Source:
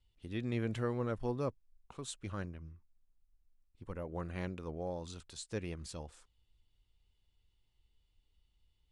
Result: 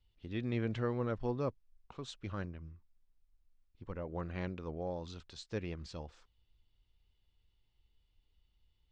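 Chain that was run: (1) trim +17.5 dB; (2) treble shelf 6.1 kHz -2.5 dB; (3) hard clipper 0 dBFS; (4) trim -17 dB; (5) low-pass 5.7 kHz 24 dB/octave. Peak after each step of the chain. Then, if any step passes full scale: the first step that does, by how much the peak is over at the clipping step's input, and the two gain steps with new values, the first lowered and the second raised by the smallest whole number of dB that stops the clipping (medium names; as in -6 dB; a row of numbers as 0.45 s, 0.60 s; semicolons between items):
-5.0 dBFS, -5.0 dBFS, -5.0 dBFS, -22.0 dBFS, -22.0 dBFS; nothing clips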